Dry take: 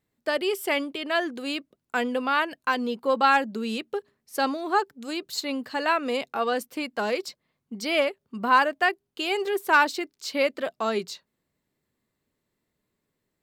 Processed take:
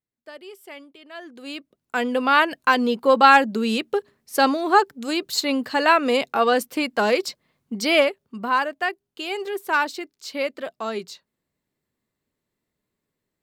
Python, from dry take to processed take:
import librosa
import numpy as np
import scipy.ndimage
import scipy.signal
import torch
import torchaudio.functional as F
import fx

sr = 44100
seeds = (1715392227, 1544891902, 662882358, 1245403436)

y = fx.gain(x, sr, db=fx.line((1.12, -15.0), (1.47, -4.5), (2.35, 7.0), (7.91, 7.0), (8.54, -2.0)))